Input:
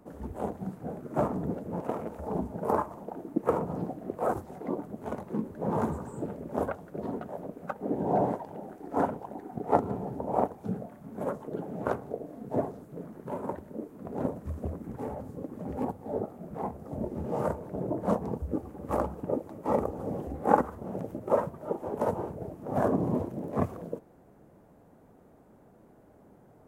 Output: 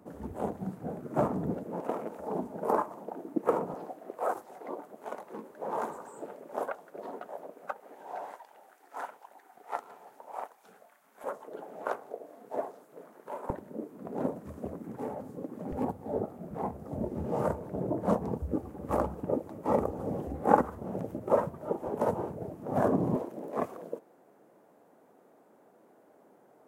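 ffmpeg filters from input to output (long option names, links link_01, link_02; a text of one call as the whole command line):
ffmpeg -i in.wav -af "asetnsamples=nb_out_samples=441:pad=0,asendcmd='1.63 highpass f 240;3.74 highpass f 540;7.8 highpass f 1400;11.24 highpass f 580;13.5 highpass f 170;15.72 highpass f 43;21.87 highpass f 90;23.16 highpass f 340',highpass=82" out.wav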